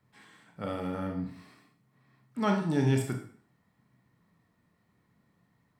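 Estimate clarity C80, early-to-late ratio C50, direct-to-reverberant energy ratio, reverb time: 11.5 dB, 7.5 dB, 2.5 dB, 0.50 s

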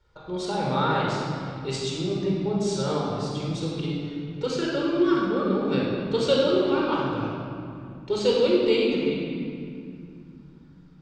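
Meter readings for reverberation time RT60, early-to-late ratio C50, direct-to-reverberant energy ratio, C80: 2.4 s, -1.5 dB, -4.0 dB, 0.5 dB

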